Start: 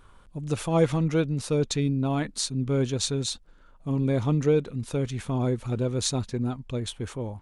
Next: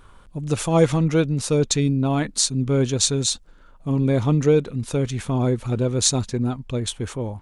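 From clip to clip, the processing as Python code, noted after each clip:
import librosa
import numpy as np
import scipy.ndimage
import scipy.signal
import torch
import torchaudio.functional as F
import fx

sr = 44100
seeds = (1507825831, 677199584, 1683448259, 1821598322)

y = fx.dynamic_eq(x, sr, hz=7100.0, q=1.2, threshold_db=-47.0, ratio=4.0, max_db=6)
y = y * librosa.db_to_amplitude(5.0)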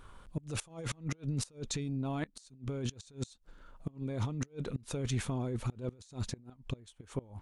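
y = fx.over_compress(x, sr, threshold_db=-25.0, ratio=-1.0)
y = fx.gate_flip(y, sr, shuts_db=-15.0, range_db=-24)
y = y * librosa.db_to_amplitude(-9.0)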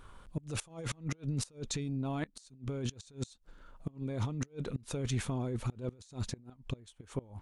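y = x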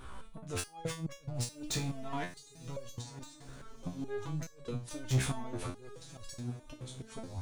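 y = 10.0 ** (-35.5 / 20.0) * np.tanh(x / 10.0 ** (-35.5 / 20.0))
y = fx.echo_diffused(y, sr, ms=1047, feedback_pct=42, wet_db=-15)
y = fx.resonator_held(y, sr, hz=4.7, low_hz=65.0, high_hz=560.0)
y = y * librosa.db_to_amplitude(15.0)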